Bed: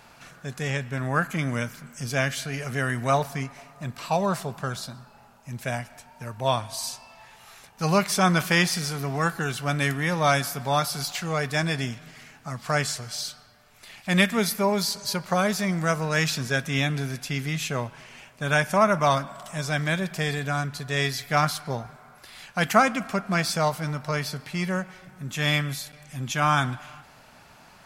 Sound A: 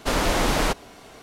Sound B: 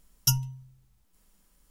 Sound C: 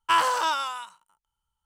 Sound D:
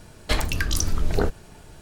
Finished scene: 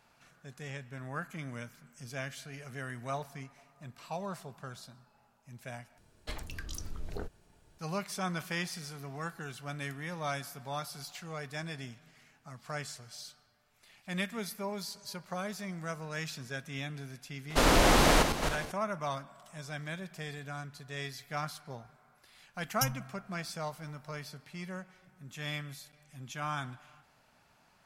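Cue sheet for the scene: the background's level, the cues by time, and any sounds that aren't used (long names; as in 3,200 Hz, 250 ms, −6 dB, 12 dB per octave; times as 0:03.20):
bed −14.5 dB
0:05.98: overwrite with D −17.5 dB
0:17.50: mix in A −1.5 dB + feedback delay that plays each chunk backwards 165 ms, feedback 49%, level −7 dB
0:22.54: mix in B −8.5 dB
not used: C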